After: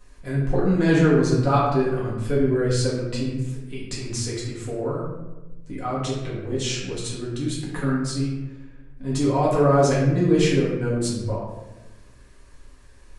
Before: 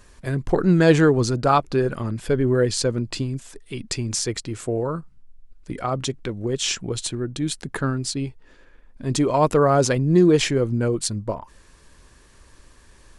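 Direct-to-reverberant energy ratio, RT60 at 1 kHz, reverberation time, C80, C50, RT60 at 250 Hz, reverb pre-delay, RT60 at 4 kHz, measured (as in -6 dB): -7.5 dB, 1.0 s, 1.1 s, 4.0 dB, 1.0 dB, 1.4 s, 4 ms, 0.65 s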